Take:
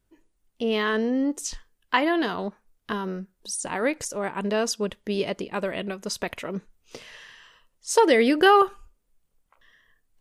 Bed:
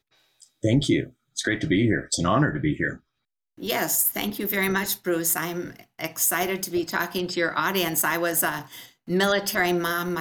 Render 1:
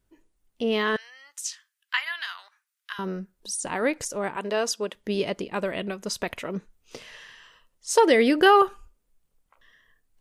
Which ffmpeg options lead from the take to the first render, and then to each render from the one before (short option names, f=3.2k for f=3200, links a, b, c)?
-filter_complex "[0:a]asettb=1/sr,asplit=3[a][b][c];[a]atrim=end=0.964[d];[b]atrim=start=0.96:end=2.99,asetpts=PTS-STARTPTS,afade=t=in:d=0.004:c=qsin,afade=t=out:st=2.026:d=0.004:c=qsin,highpass=f=1.4k:w=0.5412,highpass=f=1.4k:w=1.3066[e];[c]atrim=start=2.986[f];[d][e]acrossfade=d=0.004:c1=hsin:c2=qsin[g];[g][f]acrossfade=d=0.004:c1=qsin:c2=hsin,asettb=1/sr,asplit=3[h][i][j];[h]atrim=end=4.364[k];[i]atrim=start=4.36:end=4.95,asetpts=PTS-STARTPTS,afade=t=in:d=0.004:c=qsin,afade=t=out:st=0.586:d=0.004:c=qsin,highpass=320[l];[j]atrim=start=4.946[m];[k][l]acrossfade=d=0.004:c1=hsin:c2=qsin[n];[n][m]acrossfade=d=0.004:c1=qsin:c2=hsin"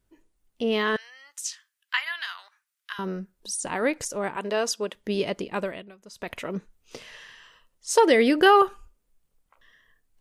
-filter_complex "[0:a]asplit=3[a][b][c];[a]atrim=end=5.85,asetpts=PTS-STARTPTS,afade=t=out:st=5.6:d=0.25:silence=0.158489[d];[b]atrim=start=5.85:end=6.13,asetpts=PTS-STARTPTS,volume=-16dB[e];[c]atrim=start=6.13,asetpts=PTS-STARTPTS,afade=t=in:d=0.25:silence=0.158489[f];[d][e][f]concat=n=3:v=0:a=1"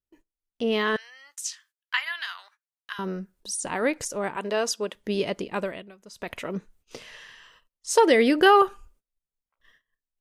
-af "agate=range=-22dB:threshold=-57dB:ratio=16:detection=peak"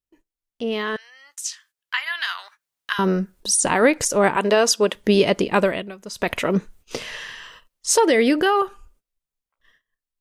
-af "alimiter=limit=-17dB:level=0:latency=1:release=348,dynaudnorm=f=250:g=17:m=12.5dB"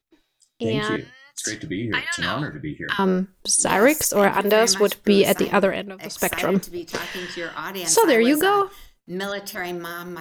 -filter_complex "[1:a]volume=-6.5dB[a];[0:a][a]amix=inputs=2:normalize=0"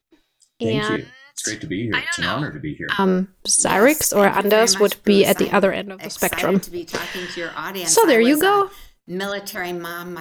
-af "volume=2.5dB,alimiter=limit=-3dB:level=0:latency=1"